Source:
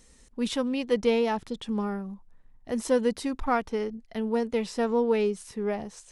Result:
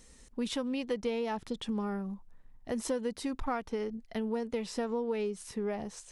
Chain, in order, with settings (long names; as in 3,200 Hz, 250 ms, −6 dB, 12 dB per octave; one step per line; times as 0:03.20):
downward compressor 4 to 1, threshold −31 dBFS, peak gain reduction 11 dB